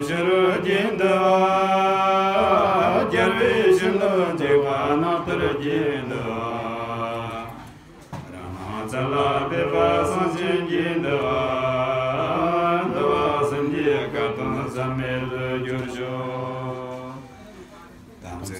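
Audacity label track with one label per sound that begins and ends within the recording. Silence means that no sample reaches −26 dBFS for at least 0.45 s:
8.130000	17.110000	sound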